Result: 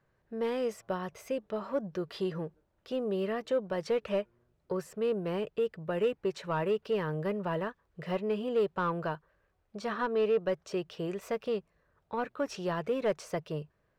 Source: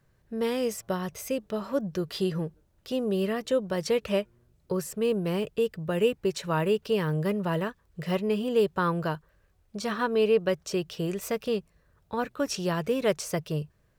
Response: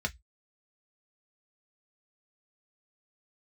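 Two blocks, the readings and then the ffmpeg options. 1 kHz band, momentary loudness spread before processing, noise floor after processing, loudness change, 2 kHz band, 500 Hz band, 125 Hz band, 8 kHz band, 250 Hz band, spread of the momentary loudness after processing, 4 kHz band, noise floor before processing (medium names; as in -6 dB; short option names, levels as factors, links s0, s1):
-3.0 dB, 8 LU, -75 dBFS, -4.5 dB, -5.0 dB, -4.0 dB, -7.5 dB, under -10 dB, -6.5 dB, 8 LU, -8.5 dB, -67 dBFS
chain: -filter_complex "[0:a]asplit=2[s0][s1];[s1]highpass=f=720:p=1,volume=4.47,asoftclip=type=tanh:threshold=0.251[s2];[s0][s2]amix=inputs=2:normalize=0,lowpass=f=1100:p=1,volume=0.501,volume=0.531"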